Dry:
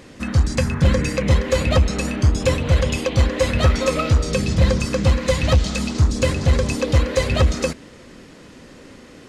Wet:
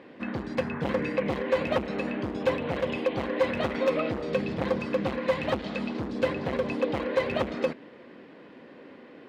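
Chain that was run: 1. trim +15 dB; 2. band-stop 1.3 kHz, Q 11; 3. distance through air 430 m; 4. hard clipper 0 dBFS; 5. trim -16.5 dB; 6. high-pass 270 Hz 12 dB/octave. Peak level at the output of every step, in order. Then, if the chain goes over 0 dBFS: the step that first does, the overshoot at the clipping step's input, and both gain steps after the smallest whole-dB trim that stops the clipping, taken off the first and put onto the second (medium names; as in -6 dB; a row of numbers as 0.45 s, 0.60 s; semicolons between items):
+7.0 dBFS, +8.5 dBFS, +7.5 dBFS, 0.0 dBFS, -16.5 dBFS, -12.5 dBFS; step 1, 7.5 dB; step 1 +7 dB, step 5 -8.5 dB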